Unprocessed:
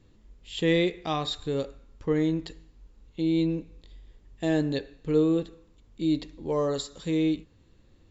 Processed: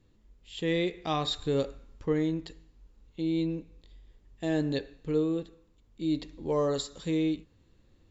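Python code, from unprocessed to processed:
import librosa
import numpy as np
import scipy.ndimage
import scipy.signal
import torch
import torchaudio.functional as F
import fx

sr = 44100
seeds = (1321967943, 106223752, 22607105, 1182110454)

y = fx.rider(x, sr, range_db=4, speed_s=0.5)
y = y * 10.0 ** (-2.0 / 20.0)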